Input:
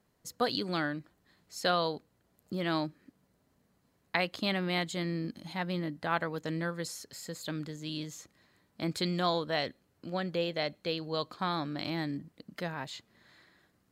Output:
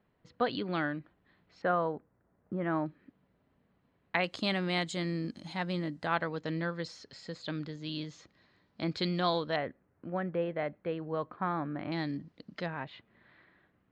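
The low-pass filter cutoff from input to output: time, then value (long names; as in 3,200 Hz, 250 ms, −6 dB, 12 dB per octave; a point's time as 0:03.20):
low-pass filter 24 dB per octave
3,200 Hz
from 0:01.62 1,800 Hz
from 0:02.86 3,300 Hz
from 0:04.24 8,600 Hz
from 0:06.07 4,900 Hz
from 0:09.56 2,000 Hz
from 0:11.92 5,300 Hz
from 0:12.66 2,900 Hz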